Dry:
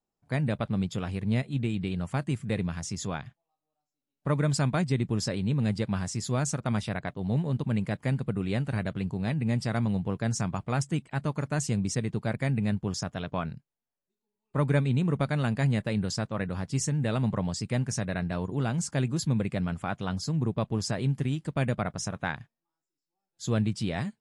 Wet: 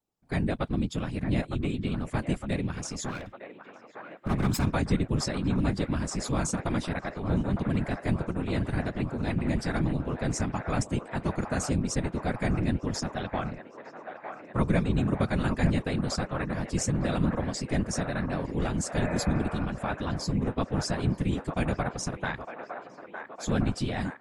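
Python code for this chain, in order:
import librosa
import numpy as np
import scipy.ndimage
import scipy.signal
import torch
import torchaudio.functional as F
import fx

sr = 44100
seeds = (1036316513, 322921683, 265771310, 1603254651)

p1 = fx.lower_of_two(x, sr, delay_ms=0.78, at=(3.07, 4.74))
p2 = fx.whisperise(p1, sr, seeds[0])
p3 = p2 + fx.echo_wet_bandpass(p2, sr, ms=908, feedback_pct=71, hz=1000.0, wet_db=-6.5, dry=0)
y = fx.spec_repair(p3, sr, seeds[1], start_s=19.01, length_s=0.62, low_hz=460.0, high_hz=2600.0, source='both')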